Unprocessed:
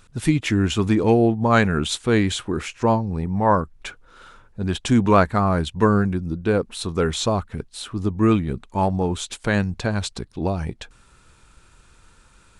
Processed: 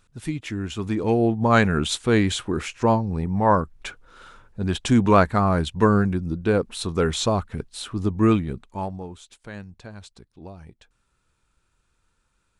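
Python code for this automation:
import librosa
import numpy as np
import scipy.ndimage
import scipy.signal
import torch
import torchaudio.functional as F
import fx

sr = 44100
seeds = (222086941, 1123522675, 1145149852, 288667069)

y = fx.gain(x, sr, db=fx.line((0.68, -9.5), (1.43, -0.5), (8.29, -0.5), (8.85, -9.0), (9.21, -17.0)))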